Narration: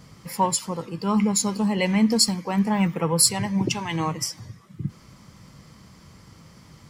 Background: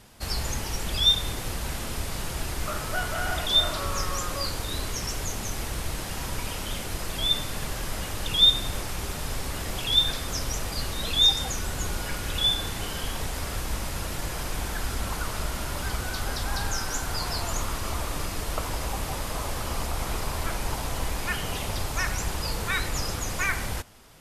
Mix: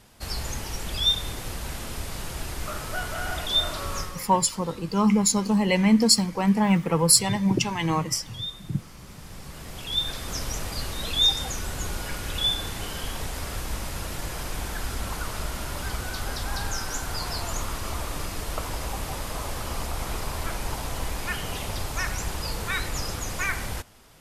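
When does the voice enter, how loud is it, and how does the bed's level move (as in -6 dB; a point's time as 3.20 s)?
3.90 s, +1.0 dB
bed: 3.99 s -2 dB
4.28 s -16.5 dB
8.94 s -16.5 dB
10.36 s -1 dB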